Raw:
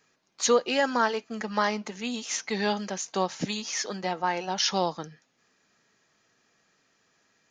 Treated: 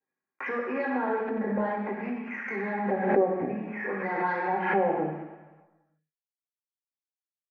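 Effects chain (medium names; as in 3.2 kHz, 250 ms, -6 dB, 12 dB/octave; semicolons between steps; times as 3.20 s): Chebyshev low-pass 2.4 kHz, order 6; gate -50 dBFS, range -58 dB; high-order bell 840 Hz -13.5 dB; comb 3.6 ms, depth 33%; compression 6:1, threshold -35 dBFS, peak gain reduction 11.5 dB; waveshaping leveller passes 1; wah-wah 0.54 Hz 600–1200 Hz, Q 2.1; saturation -32.5 dBFS, distortion -24 dB; reverberation RT60 1.3 s, pre-delay 3 ms, DRR -5.5 dB; swell ahead of each attack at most 54 dB/s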